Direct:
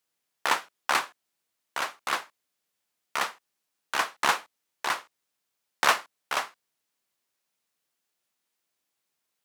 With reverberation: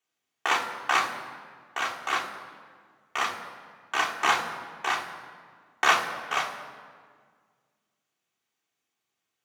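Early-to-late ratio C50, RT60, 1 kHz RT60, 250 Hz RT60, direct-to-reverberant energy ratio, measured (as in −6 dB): 8.5 dB, 1.8 s, 1.7 s, 2.3 s, −2.0 dB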